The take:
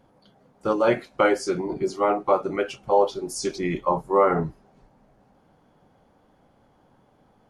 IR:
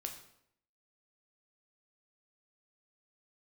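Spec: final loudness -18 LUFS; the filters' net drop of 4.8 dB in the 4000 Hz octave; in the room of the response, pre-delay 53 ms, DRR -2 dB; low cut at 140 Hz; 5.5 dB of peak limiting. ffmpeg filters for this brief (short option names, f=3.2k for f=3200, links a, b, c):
-filter_complex "[0:a]highpass=140,equalizer=f=4k:t=o:g=-7,alimiter=limit=-12.5dB:level=0:latency=1,asplit=2[a][b];[1:a]atrim=start_sample=2205,adelay=53[c];[b][c]afir=irnorm=-1:irlink=0,volume=4dB[d];[a][d]amix=inputs=2:normalize=0,volume=4dB"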